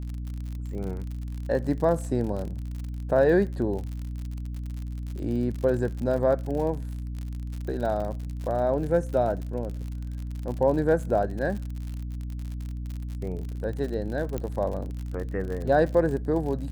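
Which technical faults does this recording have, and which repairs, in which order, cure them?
surface crackle 59 per second −33 dBFS
mains hum 60 Hz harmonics 5 −33 dBFS
0:14.38: click −18 dBFS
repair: click removal
hum removal 60 Hz, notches 5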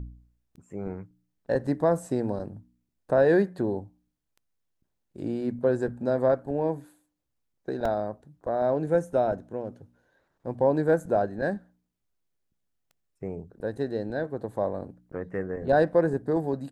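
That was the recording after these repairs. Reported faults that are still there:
none of them is left

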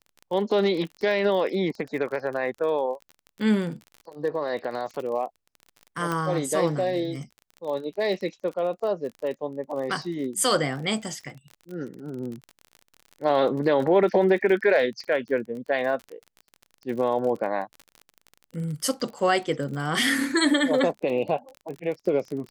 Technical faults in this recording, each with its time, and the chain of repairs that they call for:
surface crackle 34 per second −33 dBFS
0:06.12: click −15 dBFS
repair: click removal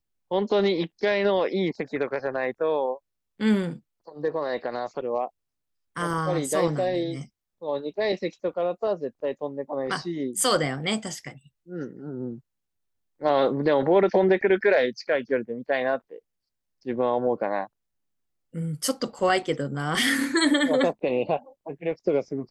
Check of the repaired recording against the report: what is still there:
none of them is left

